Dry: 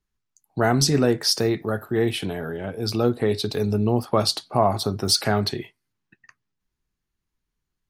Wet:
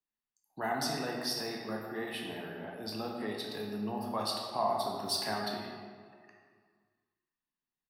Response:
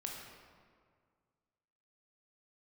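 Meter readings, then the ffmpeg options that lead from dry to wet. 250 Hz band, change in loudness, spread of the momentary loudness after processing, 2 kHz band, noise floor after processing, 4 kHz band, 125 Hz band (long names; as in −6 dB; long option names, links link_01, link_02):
−14.5 dB, −13.0 dB, 10 LU, −9.0 dB, below −85 dBFS, −12.0 dB, −21.5 dB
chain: -filter_complex "[0:a]acrossover=split=200 6000:gain=0.0794 1 0.112[link_01][link_02][link_03];[link_01][link_02][link_03]amix=inputs=3:normalize=0,aecho=1:1:1.1:0.42,acrossover=split=610|1200[link_04][link_05][link_06];[link_04]alimiter=limit=-22dB:level=0:latency=1[link_07];[link_07][link_05][link_06]amix=inputs=3:normalize=0,aexciter=amount=4.2:drive=9.4:freq=9300[link_08];[1:a]atrim=start_sample=2205[link_09];[link_08][link_09]afir=irnorm=-1:irlink=0,volume=-8.5dB"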